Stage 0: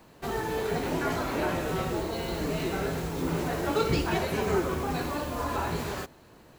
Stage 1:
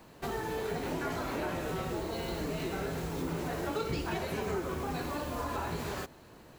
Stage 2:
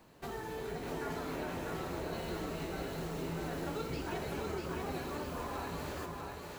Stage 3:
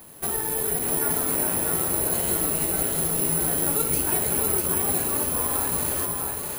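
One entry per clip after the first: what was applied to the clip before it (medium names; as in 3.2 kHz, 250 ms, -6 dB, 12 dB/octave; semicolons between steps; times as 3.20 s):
compression 2.5:1, threshold -34 dBFS, peak gain reduction 9 dB
two-band feedback delay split 440 Hz, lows 370 ms, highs 645 ms, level -3.5 dB; trim -6 dB
careless resampling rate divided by 4×, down none, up zero stuff; trim +8.5 dB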